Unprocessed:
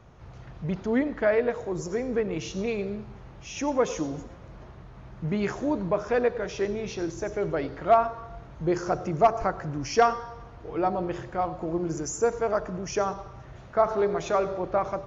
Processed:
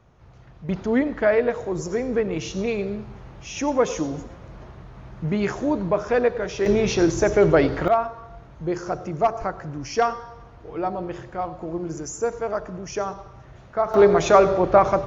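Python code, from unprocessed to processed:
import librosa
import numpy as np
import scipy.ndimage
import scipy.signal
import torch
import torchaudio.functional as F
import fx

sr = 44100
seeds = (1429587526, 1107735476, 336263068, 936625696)

y = fx.gain(x, sr, db=fx.steps((0.0, -4.0), (0.69, 4.0), (6.66, 12.0), (7.88, -0.5), (13.94, 10.5)))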